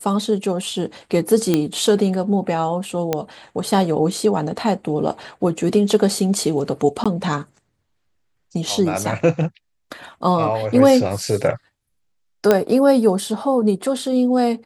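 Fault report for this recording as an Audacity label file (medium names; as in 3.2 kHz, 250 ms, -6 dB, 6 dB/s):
1.540000	1.540000	pop -4 dBFS
3.130000	3.130000	pop -6 dBFS
7.040000	7.060000	dropout 16 ms
12.510000	12.510000	pop -2 dBFS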